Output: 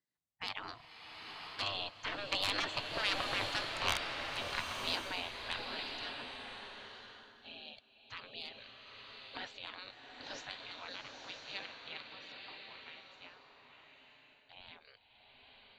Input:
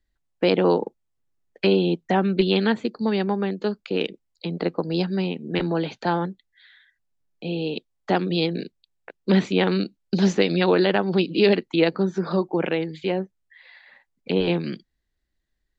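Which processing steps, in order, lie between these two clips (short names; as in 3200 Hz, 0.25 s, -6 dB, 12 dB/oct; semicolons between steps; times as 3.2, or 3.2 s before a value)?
Doppler pass-by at 3.62, 10 m/s, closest 6 m; soft clip -23 dBFS, distortion -12 dB; spectral gate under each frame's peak -20 dB weak; bloom reverb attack 0.99 s, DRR 2.5 dB; gain +6.5 dB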